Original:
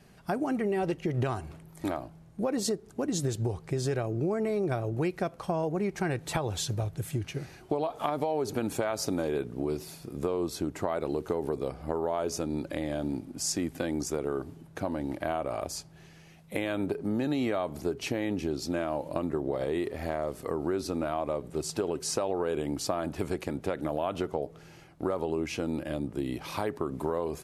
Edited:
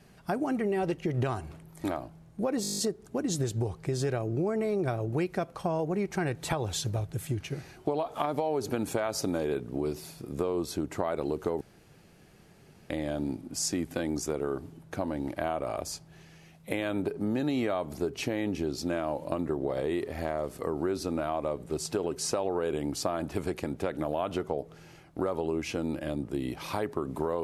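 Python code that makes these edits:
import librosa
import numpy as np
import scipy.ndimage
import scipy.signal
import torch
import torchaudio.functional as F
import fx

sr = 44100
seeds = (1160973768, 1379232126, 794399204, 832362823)

y = fx.edit(x, sr, fx.stutter(start_s=2.62, slice_s=0.02, count=9),
    fx.room_tone_fill(start_s=11.45, length_s=1.29), tone=tone)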